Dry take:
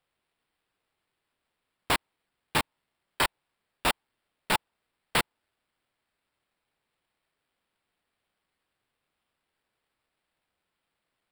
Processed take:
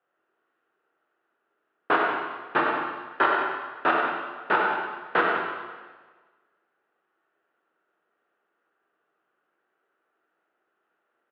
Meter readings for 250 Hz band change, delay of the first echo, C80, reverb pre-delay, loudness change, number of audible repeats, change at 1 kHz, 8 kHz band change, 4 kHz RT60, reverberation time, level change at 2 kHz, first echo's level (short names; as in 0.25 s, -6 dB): +6.5 dB, 97 ms, 1.0 dB, 11 ms, +4.0 dB, 2, +9.0 dB, under -35 dB, 1.3 s, 1.4 s, +7.5 dB, -6.5 dB